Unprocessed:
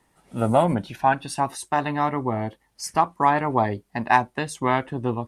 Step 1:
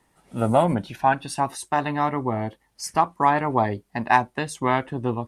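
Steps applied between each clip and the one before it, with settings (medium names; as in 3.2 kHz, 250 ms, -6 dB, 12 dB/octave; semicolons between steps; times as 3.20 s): no audible change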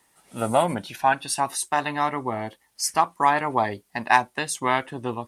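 tilt EQ +2.5 dB/octave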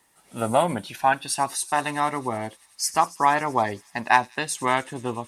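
feedback echo behind a high-pass 94 ms, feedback 84%, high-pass 4.8 kHz, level -15.5 dB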